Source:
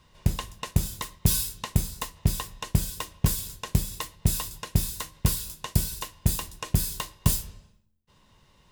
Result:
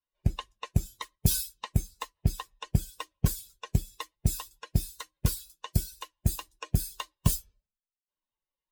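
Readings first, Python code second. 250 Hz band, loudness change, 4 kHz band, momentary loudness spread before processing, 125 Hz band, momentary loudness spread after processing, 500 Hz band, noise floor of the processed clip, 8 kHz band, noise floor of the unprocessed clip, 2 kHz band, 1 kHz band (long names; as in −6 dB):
−3.0 dB, −3.5 dB, −5.5 dB, 7 LU, −2.5 dB, 12 LU, −4.0 dB, below −85 dBFS, −5.5 dB, −62 dBFS, −5.0 dB, −4.0 dB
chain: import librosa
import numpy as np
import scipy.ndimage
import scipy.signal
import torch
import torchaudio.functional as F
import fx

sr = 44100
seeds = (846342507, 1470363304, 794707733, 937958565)

y = fx.bin_expand(x, sr, power=2.0)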